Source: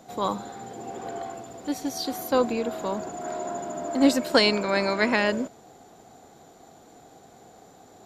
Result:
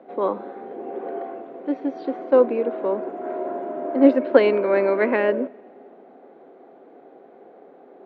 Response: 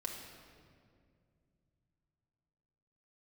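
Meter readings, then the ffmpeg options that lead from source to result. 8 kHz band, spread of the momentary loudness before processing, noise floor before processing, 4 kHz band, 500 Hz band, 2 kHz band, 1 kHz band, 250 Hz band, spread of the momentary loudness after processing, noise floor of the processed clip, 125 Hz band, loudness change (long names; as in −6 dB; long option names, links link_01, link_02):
below −35 dB, 16 LU, −52 dBFS, below −10 dB, +7.5 dB, −2.0 dB, 0.0 dB, +3.0 dB, 16 LU, −49 dBFS, can't be measured, +4.0 dB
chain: -filter_complex "[0:a]highpass=frequency=210:width=0.5412,highpass=frequency=210:width=1.3066,equalizer=frequency=270:width_type=q:width=4:gain=5,equalizer=frequency=390:width_type=q:width=4:gain=10,equalizer=frequency=550:width_type=q:width=4:gain=9,lowpass=frequency=2400:width=0.5412,lowpass=frequency=2400:width=1.3066,asplit=2[link_01][link_02];[1:a]atrim=start_sample=2205[link_03];[link_02][link_03]afir=irnorm=-1:irlink=0,volume=-21dB[link_04];[link_01][link_04]amix=inputs=2:normalize=0,volume=-1.5dB"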